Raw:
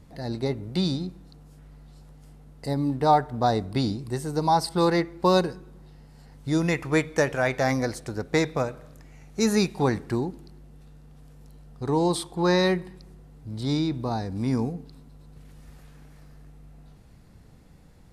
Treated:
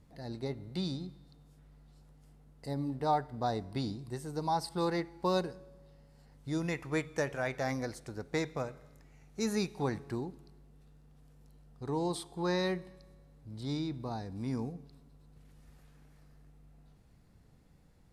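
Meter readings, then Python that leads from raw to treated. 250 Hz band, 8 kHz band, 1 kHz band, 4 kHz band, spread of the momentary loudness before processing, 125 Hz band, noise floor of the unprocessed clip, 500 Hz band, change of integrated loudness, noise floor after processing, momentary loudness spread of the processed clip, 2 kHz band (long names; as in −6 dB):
−10.5 dB, −10.0 dB, −10.5 dB, −10.5 dB, 12 LU, −10.0 dB, −51 dBFS, −10.0 dB, −10.0 dB, −62 dBFS, 13 LU, −10.5 dB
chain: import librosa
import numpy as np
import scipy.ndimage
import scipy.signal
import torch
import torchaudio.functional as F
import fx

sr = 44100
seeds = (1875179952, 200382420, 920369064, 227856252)

y = fx.comb_fb(x, sr, f0_hz=140.0, decay_s=1.7, harmonics='all', damping=0.0, mix_pct=40)
y = y * librosa.db_to_amplitude(-6.0)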